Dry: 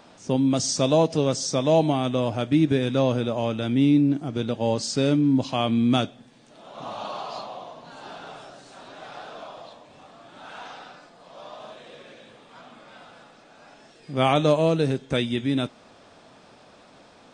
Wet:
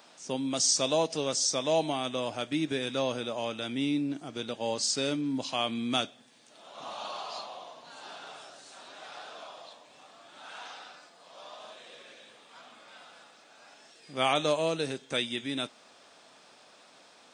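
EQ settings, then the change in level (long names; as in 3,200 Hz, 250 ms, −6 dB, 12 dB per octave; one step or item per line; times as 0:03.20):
high-pass filter 180 Hz 6 dB per octave
spectral tilt +2.5 dB per octave
−5.0 dB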